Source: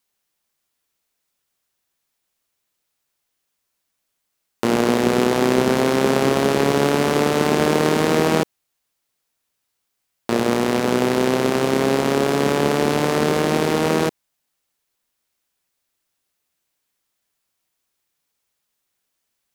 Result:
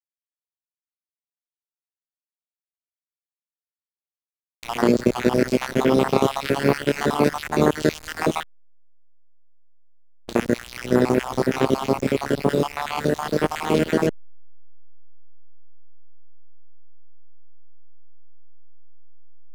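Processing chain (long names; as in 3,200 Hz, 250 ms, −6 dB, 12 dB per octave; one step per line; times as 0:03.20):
time-frequency cells dropped at random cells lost 64%
echo ahead of the sound 72 ms −15 dB
slack as between gear wheels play −25 dBFS
level +2 dB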